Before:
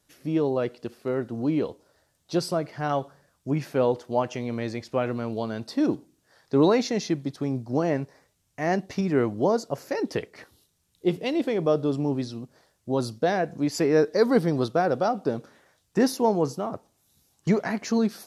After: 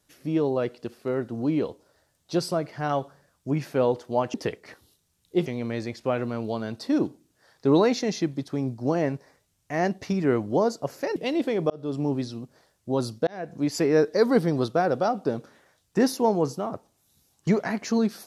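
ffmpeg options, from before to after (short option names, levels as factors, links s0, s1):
-filter_complex "[0:a]asplit=6[s0][s1][s2][s3][s4][s5];[s0]atrim=end=4.342[s6];[s1]atrim=start=10.038:end=11.162[s7];[s2]atrim=start=4.338:end=10.042[s8];[s3]atrim=start=11.158:end=11.7,asetpts=PTS-STARTPTS,afade=t=out:st=0.538:d=0.004:c=hsin[s9];[s4]atrim=start=11.7:end=13.27,asetpts=PTS-STARTPTS,afade=t=in:d=0.33,afade=t=out:st=1.566:d=0.004:c=hsin[s10];[s5]atrim=start=13.27,asetpts=PTS-STARTPTS,afade=t=in:d=0.37[s11];[s6][s7]acrossfade=d=0.004:c1=hsin:c2=hsin[s12];[s12][s8]acrossfade=d=0.004:c1=hsin:c2=hsin[s13];[s9][s10][s11]concat=n=3:v=0:a=1[s14];[s13][s14]acrossfade=d=0.004:c1=hsin:c2=hsin"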